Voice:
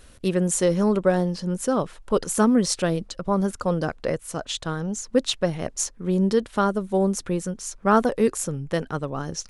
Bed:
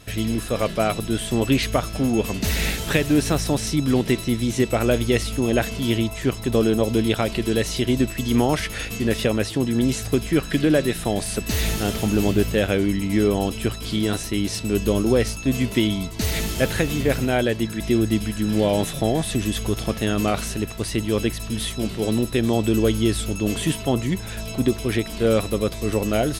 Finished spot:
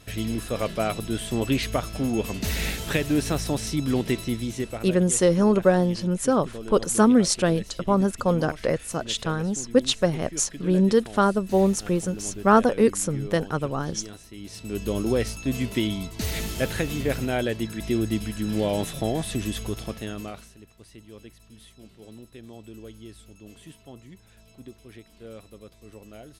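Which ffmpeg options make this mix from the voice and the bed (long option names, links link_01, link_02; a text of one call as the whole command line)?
ffmpeg -i stem1.wav -i stem2.wav -filter_complex "[0:a]adelay=4600,volume=1.5dB[link_01];[1:a]volume=9dB,afade=type=out:start_time=4.25:duration=0.67:silence=0.199526,afade=type=in:start_time=14.37:duration=0.7:silence=0.211349,afade=type=out:start_time=19.48:duration=1.03:silence=0.11885[link_02];[link_01][link_02]amix=inputs=2:normalize=0" out.wav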